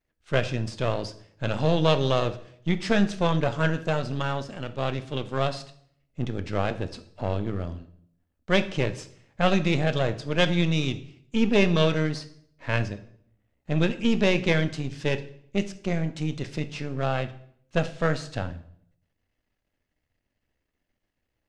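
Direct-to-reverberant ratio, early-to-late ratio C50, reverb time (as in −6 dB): 10.5 dB, 14.5 dB, 0.65 s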